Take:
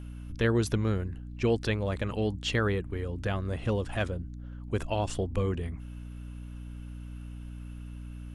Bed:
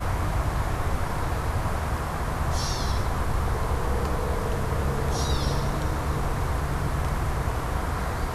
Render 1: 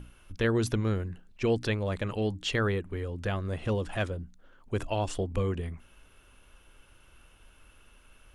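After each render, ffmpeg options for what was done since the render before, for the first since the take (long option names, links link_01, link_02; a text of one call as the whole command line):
ffmpeg -i in.wav -af "bandreject=frequency=60:width_type=h:width=6,bandreject=frequency=120:width_type=h:width=6,bandreject=frequency=180:width_type=h:width=6,bandreject=frequency=240:width_type=h:width=6,bandreject=frequency=300:width_type=h:width=6" out.wav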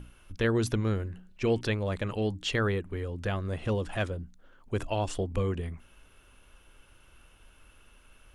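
ffmpeg -i in.wav -filter_complex "[0:a]asettb=1/sr,asplit=3[link_01][link_02][link_03];[link_01]atrim=end=0.964[link_04];[link_02]atrim=start=0.96:end=1.61,asetpts=PTS-STARTPTS,afade=type=in:duration=0.004:curve=qsin,afade=type=out:start_time=0.646:duration=0.004:curve=qsin,bandreject=frequency=184.3:width_type=h:width=4,bandreject=frequency=368.6:width_type=h:width=4,bandreject=frequency=552.9:width_type=h:width=4,bandreject=frequency=737.2:width_type=h:width=4,bandreject=frequency=921.5:width_type=h:width=4,bandreject=frequency=1105.8:width_type=h:width=4,bandreject=frequency=1290.1:width_type=h:width=4,bandreject=frequency=1474.4:width_type=h:width=4,bandreject=frequency=1658.7:width_type=h:width=4,bandreject=frequency=1843:width_type=h:width=4,bandreject=frequency=2027.3:width_type=h:width=4,bandreject=frequency=2211.6:width_type=h:width=4,bandreject=frequency=2395.9:width_type=h:width=4,bandreject=frequency=2580.2:width_type=h:width=4,bandreject=frequency=2764.5:width_type=h:width=4,bandreject=frequency=2948.8:width_type=h:width=4,bandreject=frequency=3133.1:width_type=h:width=4,bandreject=frequency=3317.4:width_type=h:width=4,bandreject=frequency=3501.7:width_type=h:width=4,bandreject=frequency=3686:width_type=h:width=4,bandreject=frequency=3870.3:width_type=h:width=4[link_05];[link_03]atrim=start=1.606[link_06];[link_04][link_05]acrossfade=duration=0.004:curve1=hsin:curve2=qsin[link_07];[link_07][link_06]acrossfade=duration=0.004:curve1=qsin:curve2=hsin" out.wav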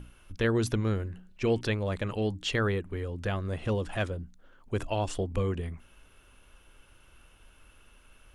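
ffmpeg -i in.wav -af anull out.wav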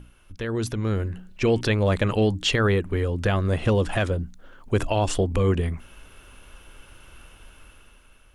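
ffmpeg -i in.wav -af "alimiter=limit=-22dB:level=0:latency=1:release=77,dynaudnorm=framelen=380:gausssize=5:maxgain=10dB" out.wav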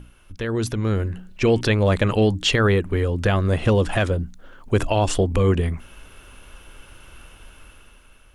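ffmpeg -i in.wav -af "volume=3dB" out.wav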